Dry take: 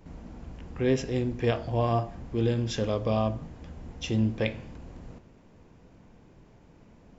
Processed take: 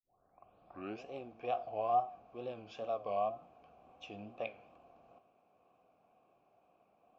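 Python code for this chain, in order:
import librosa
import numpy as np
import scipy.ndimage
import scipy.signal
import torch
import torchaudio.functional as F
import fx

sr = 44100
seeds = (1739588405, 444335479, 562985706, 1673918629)

y = fx.tape_start_head(x, sr, length_s=1.04)
y = fx.wow_flutter(y, sr, seeds[0], rate_hz=2.1, depth_cents=140.0)
y = fx.vowel_filter(y, sr, vowel='a')
y = F.gain(torch.from_numpy(y), 1.0).numpy()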